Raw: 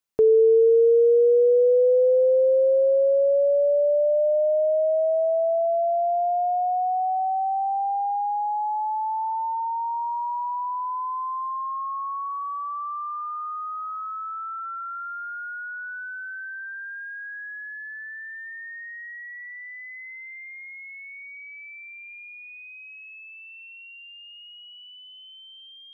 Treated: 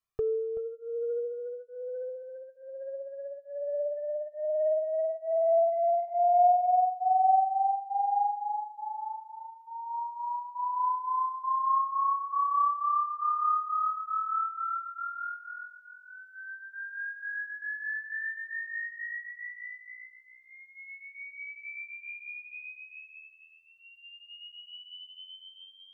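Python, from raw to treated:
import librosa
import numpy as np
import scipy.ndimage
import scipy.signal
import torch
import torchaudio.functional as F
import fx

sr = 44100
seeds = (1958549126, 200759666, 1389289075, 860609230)

y = fx.high_shelf(x, sr, hz=2300.0, db=-10.5)
y = y + 0.84 * np.pad(y, (int(1.7 * sr / 1000.0), 0))[:len(y)]
y = y + 10.0 ** (-9.5 / 20.0) * np.pad(y, (int(380 * sr / 1000.0), 0))[:len(y)]
y = fx.over_compress(y, sr, threshold_db=-20.0, ratio=-1.0)
y = fx.peak_eq(y, sr, hz=530.0, db=-15.0, octaves=0.25)
y = fx.comb_cascade(y, sr, direction='rising', hz=1.2)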